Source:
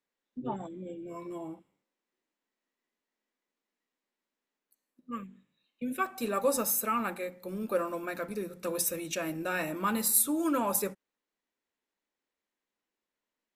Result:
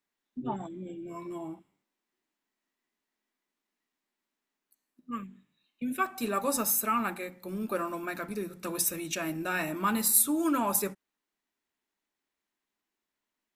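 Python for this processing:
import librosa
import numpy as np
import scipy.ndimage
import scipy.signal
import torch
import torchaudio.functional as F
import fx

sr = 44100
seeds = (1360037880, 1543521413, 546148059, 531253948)

y = fx.peak_eq(x, sr, hz=510.0, db=-11.5, octaves=0.24)
y = y * librosa.db_to_amplitude(2.0)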